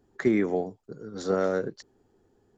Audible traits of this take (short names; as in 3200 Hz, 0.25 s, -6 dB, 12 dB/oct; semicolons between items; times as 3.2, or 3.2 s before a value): noise floor -69 dBFS; spectral tilt -4.0 dB/oct